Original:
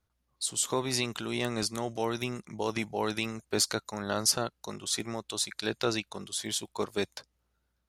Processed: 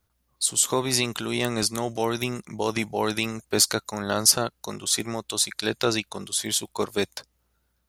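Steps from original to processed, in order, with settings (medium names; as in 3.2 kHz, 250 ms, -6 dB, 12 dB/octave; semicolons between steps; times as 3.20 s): treble shelf 11 kHz +10 dB; trim +5.5 dB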